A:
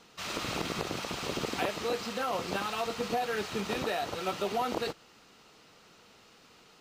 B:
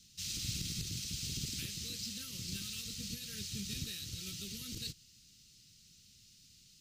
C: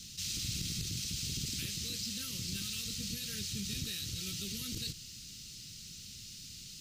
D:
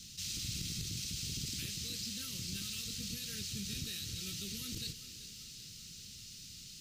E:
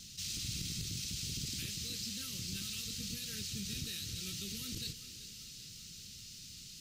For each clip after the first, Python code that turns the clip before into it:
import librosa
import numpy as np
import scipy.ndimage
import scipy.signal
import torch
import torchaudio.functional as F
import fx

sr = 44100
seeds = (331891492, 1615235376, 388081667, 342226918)

y1 = scipy.signal.sosfilt(scipy.signal.cheby1(2, 1.0, [110.0, 5400.0], 'bandstop', fs=sr, output='sos'), x)
y1 = y1 * 10.0 ** (4.0 / 20.0)
y2 = fx.env_flatten(y1, sr, amount_pct=50)
y3 = fx.echo_thinned(y2, sr, ms=386, feedback_pct=68, hz=230.0, wet_db=-13.5)
y3 = y3 * 10.0 ** (-2.5 / 20.0)
y4 = fx.vibrato(y3, sr, rate_hz=6.5, depth_cents=22.0)